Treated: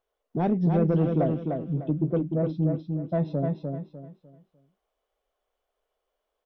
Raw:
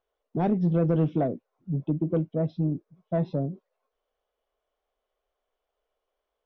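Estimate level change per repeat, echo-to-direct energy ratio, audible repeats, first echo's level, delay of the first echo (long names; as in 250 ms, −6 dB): −10.5 dB, −4.0 dB, 3, −4.5 dB, 300 ms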